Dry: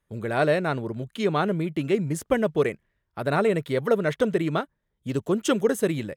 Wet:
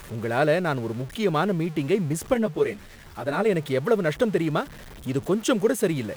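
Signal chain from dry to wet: jump at every zero crossing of -36 dBFS; 2.34–3.46 s: three-phase chorus

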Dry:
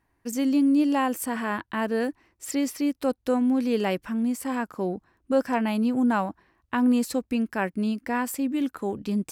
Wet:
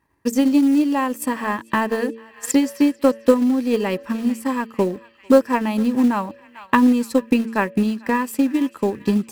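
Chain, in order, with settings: comb of notches 730 Hz; on a send: band-passed feedback delay 445 ms, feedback 82%, band-pass 2.5 kHz, level -14 dB; on the sum: transient shaper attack +10 dB, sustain -4 dB; in parallel at -5 dB: short-mantissa float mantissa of 2-bit; on the sum: peaking EQ 870 Hz +2.5 dB 0.34 oct; de-hum 113.1 Hz, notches 5

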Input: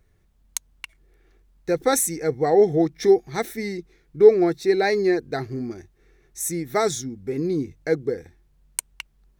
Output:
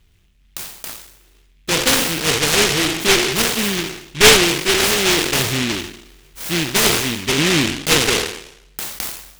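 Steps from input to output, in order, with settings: spectral sustain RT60 0.77 s; low-pass 4.9 kHz 12 dB/octave; gain riding within 4 dB 0.5 s; one-sided clip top -21 dBFS; delay time shaken by noise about 2.6 kHz, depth 0.44 ms; trim +4.5 dB

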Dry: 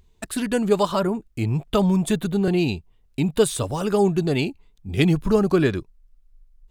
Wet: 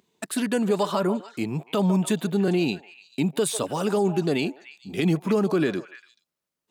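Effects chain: high-pass 170 Hz 24 dB/octave; on a send: repeats whose band climbs or falls 146 ms, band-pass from 760 Hz, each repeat 1.4 oct, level -11 dB; on the sum: peak limiter -13.5 dBFS, peak gain reduction 9 dB

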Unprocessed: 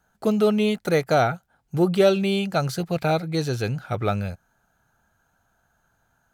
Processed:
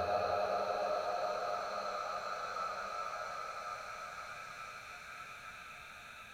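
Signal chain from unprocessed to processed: repeats whose band climbs or falls 208 ms, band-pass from 500 Hz, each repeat 0.7 oct, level -8 dB; Paulstretch 12×, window 0.50 s, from 4.51 s; trim +5.5 dB

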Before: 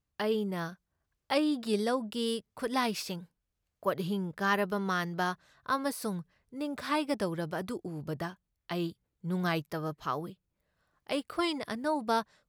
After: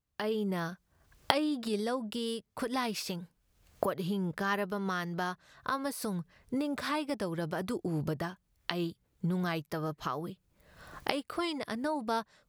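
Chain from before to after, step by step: recorder AGC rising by 37 dB/s; trim -3.5 dB

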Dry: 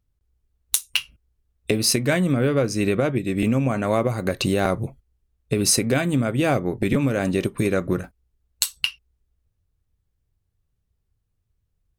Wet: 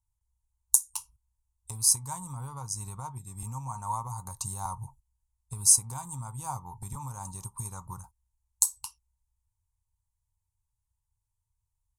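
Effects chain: FFT filter 110 Hz 0 dB, 310 Hz -27 dB, 640 Hz -22 dB, 910 Hz +15 dB, 1.7 kHz -25 dB, 2.9 kHz -22 dB, 6.9 kHz +11 dB, 9.9 kHz +12 dB, 16 kHz 0 dB; trim -9.5 dB

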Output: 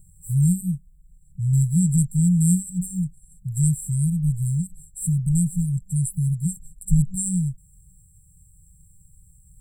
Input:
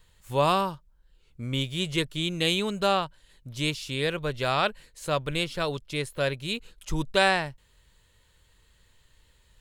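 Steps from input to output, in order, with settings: peaking EQ 6.8 kHz +13.5 dB 0.7 oct; FFT band-reject 190–7400 Hz; small resonant body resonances 280/440 Hz, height 16 dB, ringing for 25 ms; trim +8.5 dB

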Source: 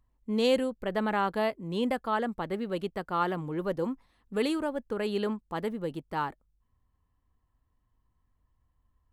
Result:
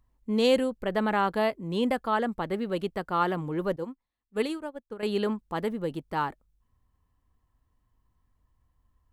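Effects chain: 3.76–5.03 s: upward expansion 2.5:1, over -40 dBFS; trim +2.5 dB

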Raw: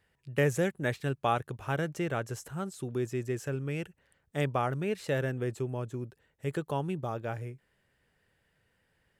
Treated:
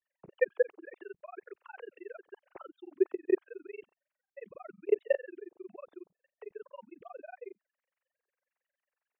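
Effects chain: formants replaced by sine waves; in parallel at -2 dB: peak limiter -26.5 dBFS, peak gain reduction 9 dB; on the sum: vibrato 1.4 Hz 47 cents; level held to a coarse grid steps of 22 dB; resonant low shelf 320 Hz -6.5 dB, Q 3; granulator 40 ms, grains 22 per s, spray 32 ms, pitch spread up and down by 0 st

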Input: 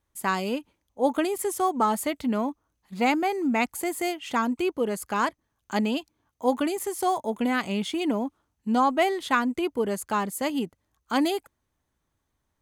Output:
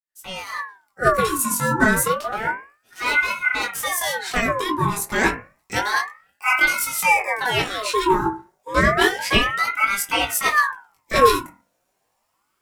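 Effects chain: fade-in on the opening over 1.26 s; treble shelf 2.9 kHz +11.5 dB; 2.07–3.84 s: valve stage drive 24 dB, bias 0.45; FDN reverb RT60 0.36 s, low-frequency decay 1.05×, high-frequency decay 0.35×, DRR -1 dB; chorus 0.38 Hz, delay 18 ms, depth 3.4 ms; ring modulator with a swept carrier 1.2 kHz, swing 50%, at 0.3 Hz; trim +6 dB

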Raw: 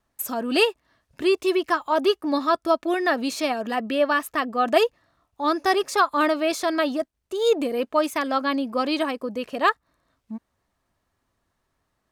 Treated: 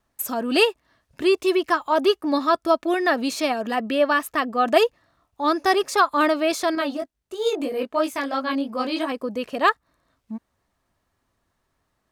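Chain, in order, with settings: 6.75–9.12 s: chorus 3 Hz, delay 18.5 ms, depth 3.4 ms; trim +1.5 dB

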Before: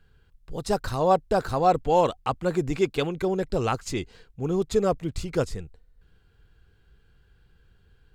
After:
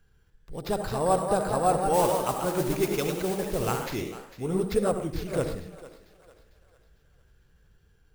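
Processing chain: thinning echo 450 ms, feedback 44%, high-pass 410 Hz, level -15 dB; on a send at -7 dB: reverberation RT60 0.45 s, pre-delay 64 ms; on the sum: sample-and-hold 5×; 1.93–3.86 s: modulation noise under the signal 14 dB; ever faster or slower copies 266 ms, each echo +1 st, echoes 3, each echo -6 dB; trim -4 dB

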